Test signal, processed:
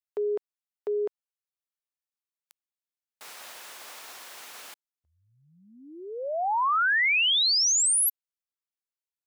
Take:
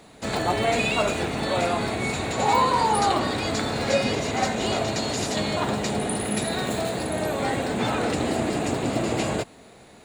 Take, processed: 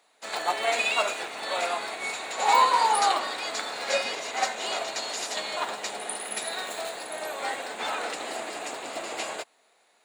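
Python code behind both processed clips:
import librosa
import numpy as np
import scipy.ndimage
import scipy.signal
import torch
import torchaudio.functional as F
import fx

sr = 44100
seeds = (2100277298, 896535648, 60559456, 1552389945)

y = scipy.signal.sosfilt(scipy.signal.butter(2, 730.0, 'highpass', fs=sr, output='sos'), x)
y = fx.upward_expand(y, sr, threshold_db=-48.0, expansion=1.5)
y = F.gain(torch.from_numpy(y), 3.0).numpy()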